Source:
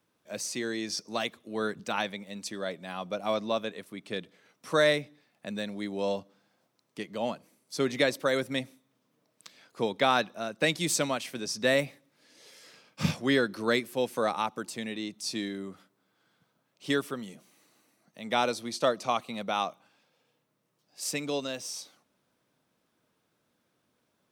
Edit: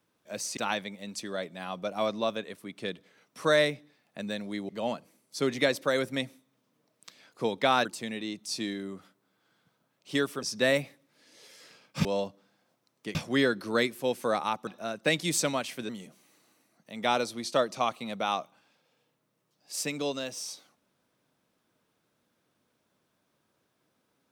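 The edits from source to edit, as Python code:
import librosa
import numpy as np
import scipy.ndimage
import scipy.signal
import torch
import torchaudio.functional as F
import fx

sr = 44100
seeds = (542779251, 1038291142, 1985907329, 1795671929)

y = fx.edit(x, sr, fx.cut(start_s=0.57, length_s=1.28),
    fx.move(start_s=5.97, length_s=1.1, to_s=13.08),
    fx.swap(start_s=10.23, length_s=1.22, other_s=14.6, other_length_s=2.57), tone=tone)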